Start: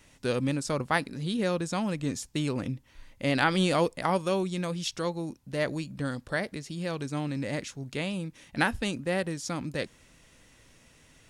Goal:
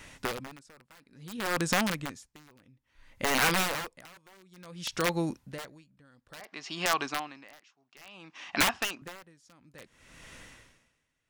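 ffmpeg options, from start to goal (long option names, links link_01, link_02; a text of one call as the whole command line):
ffmpeg -i in.wav -filter_complex "[0:a]asettb=1/sr,asplit=3[link_01][link_02][link_03];[link_01]atrim=end=6.404[link_04];[link_02]atrim=start=6.4:end=9.02,asetpts=PTS-STARTPTS,afade=type=in:duration=0.004:curve=qsin,afade=type=out:start_time=2.616:duration=0.004:curve=qsin,highpass=380,equalizer=frequency=510:width_type=q:width=4:gain=-9,equalizer=frequency=740:width_type=q:width=4:gain=9,equalizer=frequency=1100:width_type=q:width=4:gain=9,equalizer=frequency=2800:width_type=q:width=4:gain=6,equalizer=frequency=5300:width_type=q:width=4:gain=3,lowpass=frequency=6400:width=0.5412,lowpass=frequency=6400:width=1.3066[link_05];[link_03]atrim=start=9.016[link_06];[link_04][link_05]acrossfade=duration=0.004:curve1=hsin:curve2=qsin[link_07];[link_07][link_06]acrossfade=duration=0.004:curve1=qsin:curve2=hsin,aeval=exprs='(mod(11.2*val(0)+1,2)-1)/11.2':channel_layout=same,acompressor=threshold=-31dB:ratio=6,equalizer=frequency=1600:width=0.69:gain=6,aeval=exprs='val(0)*pow(10,-32*(0.5-0.5*cos(2*PI*0.58*n/s))/20)':channel_layout=same,volume=6.5dB" out.wav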